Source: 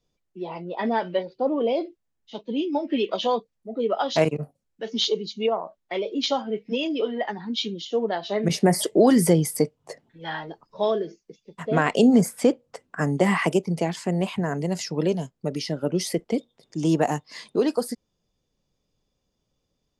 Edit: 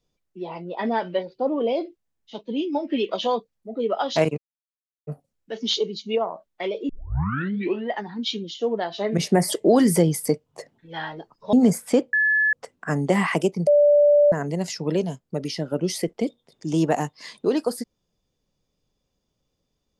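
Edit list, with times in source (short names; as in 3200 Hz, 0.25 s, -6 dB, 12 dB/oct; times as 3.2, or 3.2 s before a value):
4.38 insert silence 0.69 s
6.2 tape start 0.99 s
10.84–12.04 cut
12.64 add tone 1720 Hz -16.5 dBFS 0.40 s
13.78–14.43 bleep 585 Hz -12 dBFS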